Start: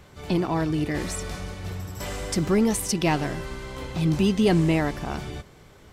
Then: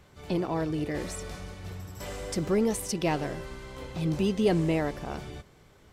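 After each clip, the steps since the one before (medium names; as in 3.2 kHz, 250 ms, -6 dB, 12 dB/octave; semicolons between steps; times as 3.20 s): dynamic bell 510 Hz, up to +7 dB, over -41 dBFS, Q 2; trim -6.5 dB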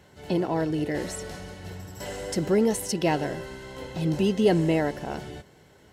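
comb of notches 1.2 kHz; trim +4 dB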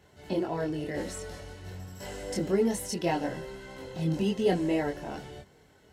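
chorus voices 4, 0.37 Hz, delay 23 ms, depth 2.5 ms; trim -1.5 dB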